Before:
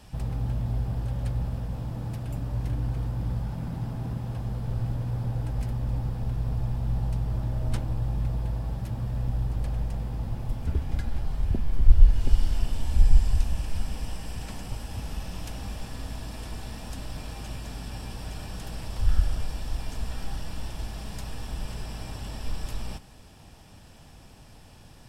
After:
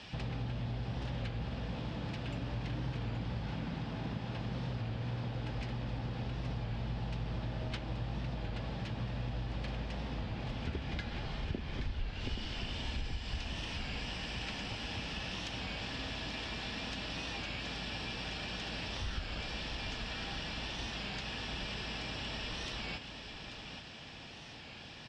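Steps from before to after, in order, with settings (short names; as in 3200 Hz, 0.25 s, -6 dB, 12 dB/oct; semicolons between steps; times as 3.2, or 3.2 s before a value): weighting filter D; compressor 4:1, threshold -37 dBFS, peak gain reduction 12 dB; air absorption 170 m; echo 0.828 s -8.5 dB; record warp 33 1/3 rpm, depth 100 cents; gain +2.5 dB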